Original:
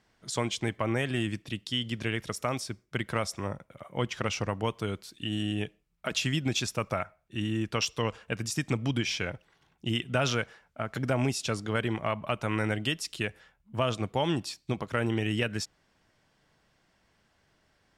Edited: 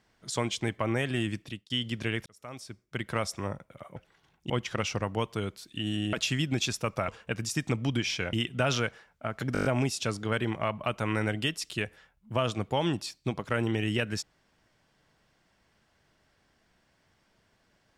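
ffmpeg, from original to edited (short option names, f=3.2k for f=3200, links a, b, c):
-filter_complex "[0:a]asplit=14[a][b][c][d][e][f][g][h][i][j][k][l][m][n];[a]atrim=end=1.7,asetpts=PTS-STARTPTS,afade=t=out:st=1.43:d=0.27[o];[b]atrim=start=1.7:end=2.26,asetpts=PTS-STARTPTS,afade=t=in:d=0.004:c=hsin,afade=t=out:st=0.556:d=0.004:c=hsin[p];[c]atrim=start=2.26:end=3.962,asetpts=PTS-STARTPTS,afade=t=in:d=0.96[q];[d]atrim=start=9.338:end=9.882[r];[e]atrim=start=3.958:end=5.592[s];[f]atrim=start=6.068:end=7.022[t];[g]atrim=start=8.088:end=9.342[u];[h]atrim=start=9.878:end=11.102[v];[i]atrim=start=11.078:end=11.102[w];[j]atrim=start=11.078:end=11.102[x];[k]atrim=start=11.078:end=11.102[y];[l]atrim=start=11.078:end=11.102[z];[m]atrim=start=11.078:end=11.102[aa];[n]atrim=start=11.078[ab];[o][p][q]concat=n=3:v=0:a=1[ac];[ac][r]acrossfade=d=0.004:c1=hsin:c2=hsin[ad];[ad][s]acrossfade=d=0.004:c1=hsin:c2=hsin[ae];[ae][t]acrossfade=d=0.004:c1=hsin:c2=hsin[af];[af][u]acrossfade=d=0.004:c1=hsin:c2=hsin[ag];[ag][v]acrossfade=d=0.004:c1=hsin:c2=hsin[ah];[ah][w]acrossfade=d=0.004:c1=hsin:c2=hsin[ai];[ai][x]acrossfade=d=0.004:c1=hsin:c2=hsin[aj];[aj][y]acrossfade=d=0.004:c1=hsin:c2=hsin[ak];[ak][z]acrossfade=d=0.004:c1=hsin:c2=hsin[al];[al][aa]acrossfade=d=0.004:c1=hsin:c2=hsin[am];[am][ab]acrossfade=d=0.004:c1=hsin:c2=hsin"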